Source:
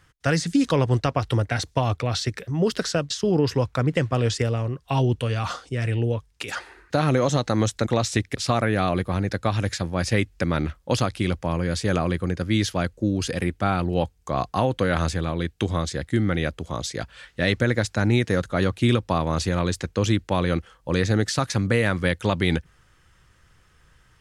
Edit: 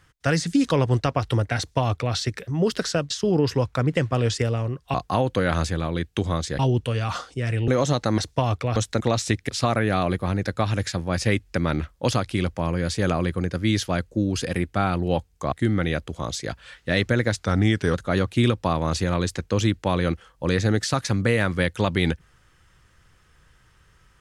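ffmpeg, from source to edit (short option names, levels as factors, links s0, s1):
-filter_complex "[0:a]asplit=9[s0][s1][s2][s3][s4][s5][s6][s7][s8];[s0]atrim=end=4.942[s9];[s1]atrim=start=14.378:end=16.032[s10];[s2]atrim=start=4.938:end=6.032[s11];[s3]atrim=start=7.118:end=7.622[s12];[s4]atrim=start=1.568:end=2.152[s13];[s5]atrim=start=7.618:end=14.382[s14];[s6]atrim=start=16.028:end=17.874[s15];[s7]atrim=start=17.87:end=18.39,asetpts=PTS-STARTPTS,asetrate=39690,aresample=44100[s16];[s8]atrim=start=18.386[s17];[s9][s10]acrossfade=d=0.004:c1=hsin:c2=hsin[s18];[s18][s11]acrossfade=d=0.004:c1=hsin:c2=hsin[s19];[s19][s12]acrossfade=d=0.004:c1=hsin:c2=hsin[s20];[s20][s13]acrossfade=d=0.004:c1=hsin:c2=hsin[s21];[s21][s14]acrossfade=d=0.004:c1=hsin:c2=hsin[s22];[s22][s15]acrossfade=d=0.004:c1=hsin:c2=hsin[s23];[s23][s16]acrossfade=d=0.004:c1=hsin:c2=hsin[s24];[s24][s17]acrossfade=d=0.004:c1=hsin:c2=hsin"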